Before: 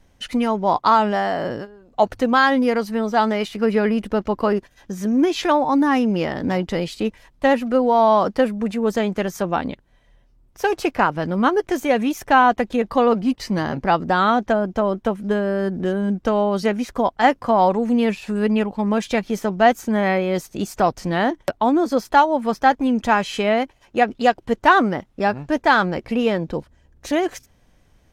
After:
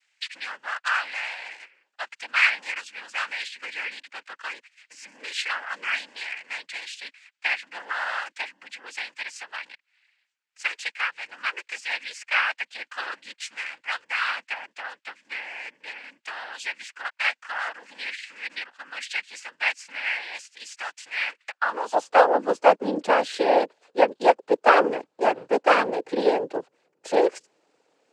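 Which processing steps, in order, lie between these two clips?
noise-vocoded speech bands 8; high-pass sweep 2.1 kHz -> 440 Hz, 21.46–22.18 s; trim -4.5 dB

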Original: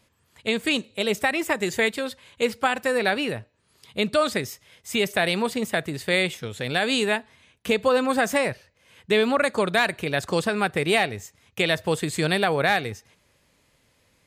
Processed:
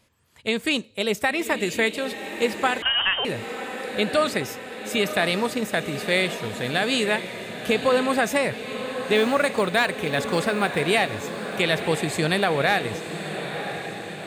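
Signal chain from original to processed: 9.15–10.81 s: short-mantissa float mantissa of 4-bit; echo that smears into a reverb 1020 ms, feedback 63%, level -9.5 dB; 2.82–3.25 s: frequency inversion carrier 3.4 kHz

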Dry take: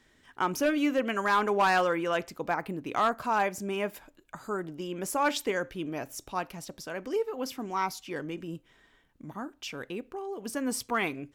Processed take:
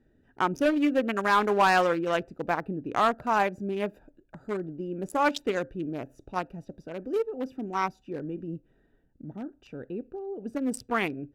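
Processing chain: local Wiener filter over 41 samples; trim +3.5 dB

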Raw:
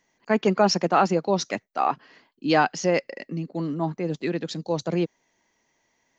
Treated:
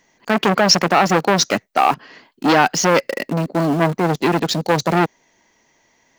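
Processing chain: in parallel at -6.5 dB: bit crusher 6-bit; on the sum: loudness maximiser +10.5 dB; transformer saturation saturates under 1.1 kHz

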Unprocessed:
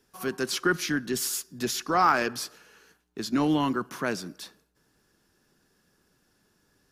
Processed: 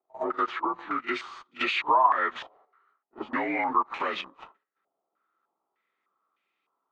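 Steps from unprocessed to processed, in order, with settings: frequency axis rescaled in octaves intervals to 87%; gate -55 dBFS, range -9 dB; high-pass 520 Hz 12 dB/octave; in parallel at +0.5 dB: level held to a coarse grid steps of 21 dB; on the sum: waveshaping leveller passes 2; compression 10:1, threshold -26 dBFS, peak gain reduction 15.5 dB; on a send: reverse echo 46 ms -19 dB; on the sum: step-sequenced low-pass 3.3 Hz 720–2400 Hz; trim -1.5 dB

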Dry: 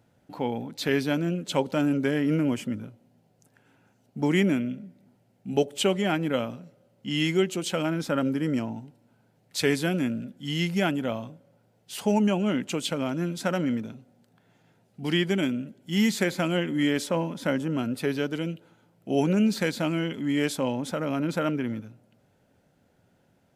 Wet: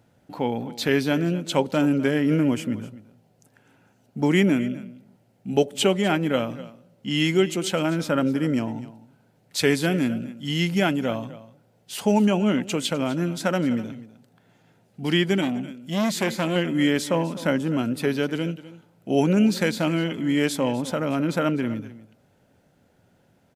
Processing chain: on a send: delay 253 ms -17 dB; 15.41–16.56 s: on the sum: transformer saturation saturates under 1 kHz; trim +3.5 dB

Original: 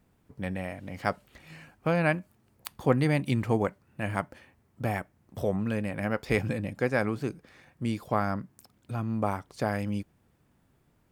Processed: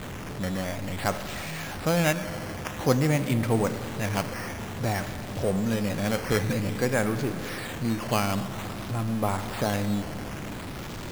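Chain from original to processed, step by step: jump at every zero crossing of -31 dBFS; Schroeder reverb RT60 3.7 s, combs from 31 ms, DRR 9 dB; decimation with a swept rate 8×, swing 100% 0.52 Hz

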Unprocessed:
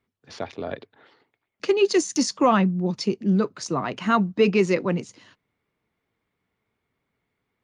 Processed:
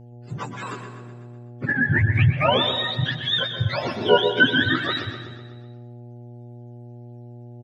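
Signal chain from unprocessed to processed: spectrum inverted on a logarithmic axis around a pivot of 820 Hz; 3.95–4.47 s: small resonant body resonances 400/870/1400 Hz, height 17 dB, ringing for 85 ms; mains buzz 120 Hz, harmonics 7, -46 dBFS -8 dB/octave; feedback delay 125 ms, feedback 58%, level -12 dB; on a send at -10.5 dB: reverberation RT60 1.0 s, pre-delay 108 ms; on the sum: trim +2 dB

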